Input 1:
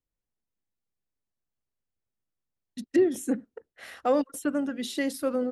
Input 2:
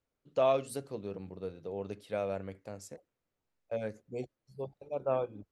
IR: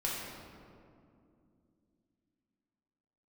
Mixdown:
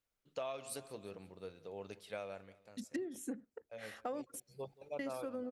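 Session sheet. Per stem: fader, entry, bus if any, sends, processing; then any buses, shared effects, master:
-7.0 dB, 0.00 s, muted 4.40–4.99 s, no send, no echo send, none
2.15 s -5 dB -> 2.54 s -13.5 dB -> 3.66 s -13.5 dB -> 4.44 s -2 dB, 0.00 s, no send, echo send -21 dB, tilt shelf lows -6 dB, about 840 Hz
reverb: none
echo: feedback delay 176 ms, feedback 48%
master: compression 16:1, threshold -37 dBFS, peak gain reduction 13.5 dB

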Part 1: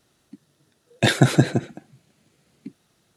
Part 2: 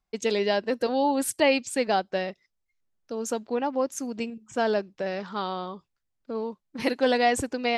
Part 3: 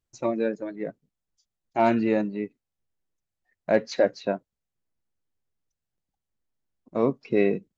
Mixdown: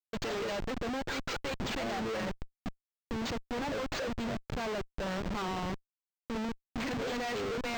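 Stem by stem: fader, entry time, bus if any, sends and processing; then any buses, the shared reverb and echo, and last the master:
+2.0 dB, 0.00 s, no send, expander on every frequency bin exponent 2; peaking EQ 150 Hz +12.5 dB 2.2 oct; peak limiter -8 dBFS, peak gain reduction 13.5 dB
-9.0 dB, 0.00 s, no send, high-pass 64 Hz 6 dB/octave; peaking EQ 480 Hz -7.5 dB 1.9 oct; hum notches 50/100/150/200/250/300 Hz
-15.5 dB, 0.00 s, no send, bass shelf 170 Hz +8 dB; auto-wah 480–4500 Hz, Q 2.8, down, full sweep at -17.5 dBFS; small resonant body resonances 210/460/1700 Hz, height 10 dB, ringing for 60 ms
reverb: none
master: compressor with a negative ratio -30 dBFS, ratio -0.5; Schmitt trigger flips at -42 dBFS; decimation joined by straight lines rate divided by 4×

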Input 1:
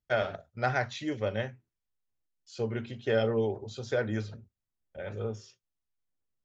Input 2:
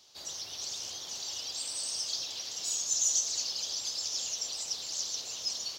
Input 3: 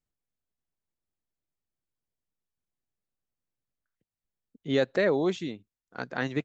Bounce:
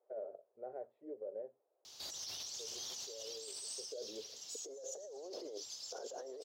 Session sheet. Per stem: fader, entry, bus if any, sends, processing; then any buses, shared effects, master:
-11.5 dB, 0.00 s, bus A, no send, none
-3.0 dB, 1.85 s, no bus, no send, treble shelf 5.3 kHz +5.5 dB; auto duck -17 dB, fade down 0.25 s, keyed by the third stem
+3.0 dB, 0.00 s, bus A, no send, high-pass 670 Hz 12 dB/octave; overdrive pedal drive 35 dB, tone 1.5 kHz, clips at -16.5 dBFS
bus A: 0.0 dB, Butterworth band-pass 480 Hz, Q 2.1; peak limiter -29.5 dBFS, peak gain reduction 13 dB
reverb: none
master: compressor with a negative ratio -44 dBFS, ratio -1; peak limiter -35.5 dBFS, peak gain reduction 7.5 dB

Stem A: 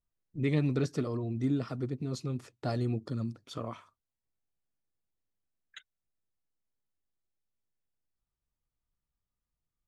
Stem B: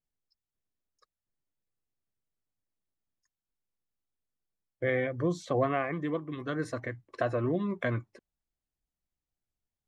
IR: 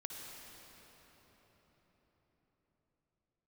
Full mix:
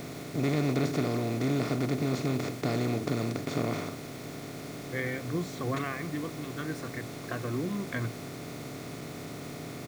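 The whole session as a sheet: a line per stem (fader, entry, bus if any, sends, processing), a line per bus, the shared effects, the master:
-3.5 dB, 0.00 s, no send, spectral levelling over time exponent 0.2
-1.0 dB, 0.10 s, no send, peaking EQ 610 Hz -12 dB 0.77 oct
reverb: none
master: word length cut 8-bit, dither none

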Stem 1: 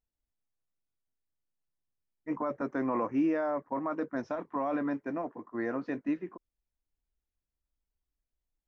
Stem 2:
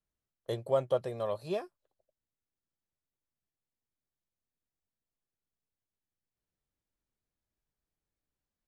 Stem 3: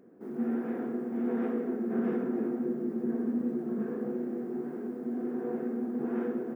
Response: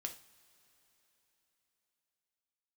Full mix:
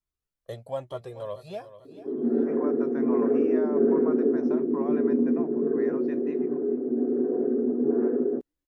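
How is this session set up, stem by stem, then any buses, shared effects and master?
-7.5 dB, 0.20 s, send -7 dB, echo send -24 dB, none
+2.0 dB, 0.00 s, no send, echo send -14 dB, Shepard-style flanger rising 1.1 Hz
+2.0 dB, 1.85 s, no send, no echo send, resonances exaggerated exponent 1.5; peaking EQ 360 Hz +9.5 dB 0.97 oct; comb 7.1 ms, depth 73%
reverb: on, pre-delay 3 ms
echo: feedback delay 439 ms, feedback 42%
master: none

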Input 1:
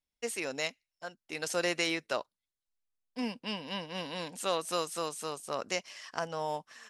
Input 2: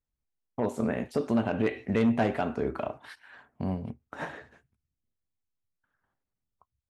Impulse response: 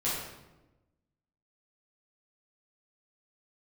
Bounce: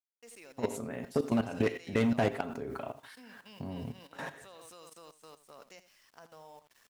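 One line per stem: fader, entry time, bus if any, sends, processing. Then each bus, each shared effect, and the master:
-12.0 dB, 0.00 s, no send, echo send -10.5 dB, none
0.0 dB, 0.00 s, no send, echo send -14.5 dB, treble shelf 5.9 kHz +11 dB; comb 7.4 ms, depth 40%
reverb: none
echo: delay 82 ms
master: bit crusher 10-bit; level held to a coarse grid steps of 13 dB

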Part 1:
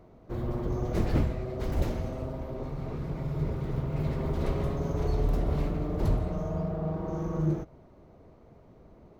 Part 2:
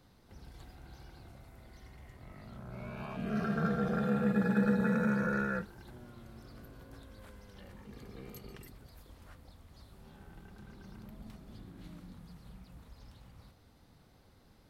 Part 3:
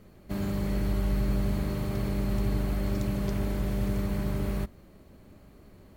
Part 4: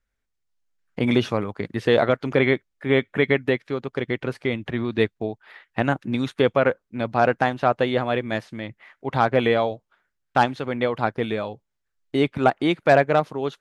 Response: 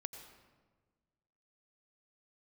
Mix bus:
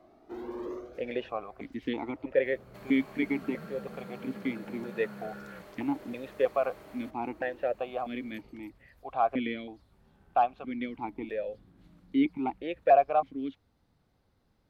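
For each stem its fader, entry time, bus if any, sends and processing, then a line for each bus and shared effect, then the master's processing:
+2.0 dB, 0.00 s, no send, high-pass 300 Hz 24 dB/octave; saturation -31.5 dBFS, distortion -15 dB; cancelling through-zero flanger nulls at 0.28 Hz, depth 2.2 ms; auto duck -16 dB, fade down 0.25 s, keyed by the fourth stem
-8.5 dB, 0.00 s, no send, compression, threshold -33 dBFS, peak gain reduction 9.5 dB
0.0 dB, 2.45 s, no send, high-pass 590 Hz 12 dB/octave; compression 4:1, threshold -51 dBFS, peak gain reduction 12.5 dB
+0.5 dB, 0.00 s, no send, stepped vowel filter 3.1 Hz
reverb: none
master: treble shelf 4.4 kHz -5.5 dB

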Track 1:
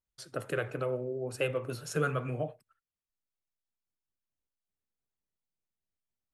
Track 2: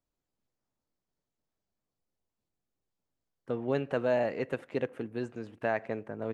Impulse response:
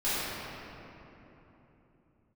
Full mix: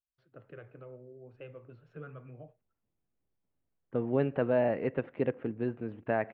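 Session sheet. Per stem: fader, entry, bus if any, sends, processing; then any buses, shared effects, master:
-19.5 dB, 0.00 s, no send, none
-2.5 dB, 0.45 s, no send, none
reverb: none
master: low-pass 2.9 kHz 24 dB/octave; bass shelf 490 Hz +7 dB

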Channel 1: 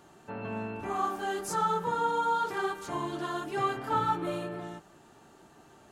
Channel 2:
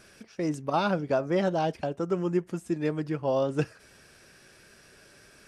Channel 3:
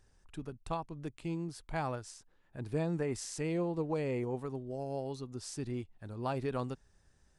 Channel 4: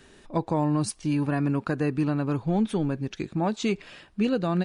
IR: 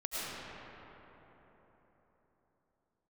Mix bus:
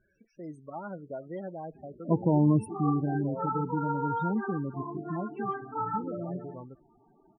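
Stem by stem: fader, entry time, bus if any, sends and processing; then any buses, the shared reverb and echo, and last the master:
-4.0 dB, 1.85 s, no send, none
-12.5 dB, 0.00 s, no send, none
-7.5 dB, 0.00 s, no send, auto duck -19 dB, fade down 0.25 s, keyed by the second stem
2.58 s -2.5 dB -> 3.29 s -11 dB -> 5.07 s -11 dB -> 5.53 s -18 dB, 1.75 s, no send, high-pass 82 Hz 12 dB/octave; tilt shelf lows +6 dB, about 850 Hz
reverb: none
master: loudest bins only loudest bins 16

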